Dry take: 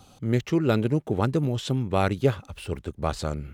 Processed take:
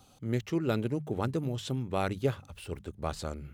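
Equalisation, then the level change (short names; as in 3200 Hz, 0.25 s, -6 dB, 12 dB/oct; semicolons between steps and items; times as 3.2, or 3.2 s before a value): high shelf 8300 Hz +5 dB; notches 50/100/150/200 Hz; -7.0 dB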